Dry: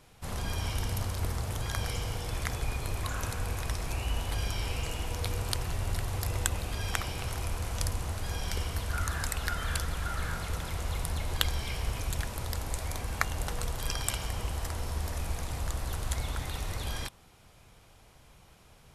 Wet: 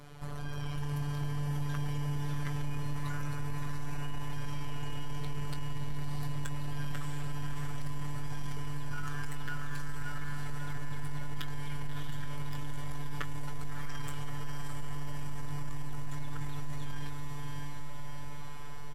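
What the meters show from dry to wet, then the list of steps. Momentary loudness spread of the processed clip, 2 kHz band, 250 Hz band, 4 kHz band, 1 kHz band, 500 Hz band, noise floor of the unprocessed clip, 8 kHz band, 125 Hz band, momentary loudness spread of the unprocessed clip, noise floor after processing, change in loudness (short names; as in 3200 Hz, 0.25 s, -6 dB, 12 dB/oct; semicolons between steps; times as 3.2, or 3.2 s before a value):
7 LU, -6.0 dB, +2.5 dB, -10.5 dB, -5.0 dB, -7.5 dB, -57 dBFS, -13.0 dB, -2.0 dB, 4 LU, -33 dBFS, -5.5 dB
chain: robotiser 145 Hz; notch 2700 Hz, Q 10; doubler 20 ms -10 dB; compressor 2.5:1, threshold -49 dBFS, peak gain reduction 17 dB; high shelf 3300 Hz -10.5 dB; on a send: diffused feedback echo 0.659 s, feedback 66%, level -5.5 dB; on the sum: AGC gain up to 4 dB; soft clip -34 dBFS, distortion -18 dB; gain +10 dB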